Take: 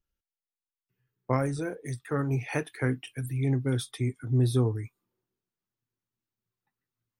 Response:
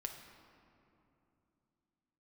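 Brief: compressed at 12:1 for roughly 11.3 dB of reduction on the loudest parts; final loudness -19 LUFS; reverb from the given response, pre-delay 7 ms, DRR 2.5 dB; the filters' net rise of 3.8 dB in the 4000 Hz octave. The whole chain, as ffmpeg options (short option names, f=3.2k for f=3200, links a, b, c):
-filter_complex "[0:a]equalizer=f=4k:t=o:g=4.5,acompressor=threshold=-31dB:ratio=12,asplit=2[a][b];[1:a]atrim=start_sample=2205,adelay=7[c];[b][c]afir=irnorm=-1:irlink=0,volume=-0.5dB[d];[a][d]amix=inputs=2:normalize=0,volume=14.5dB"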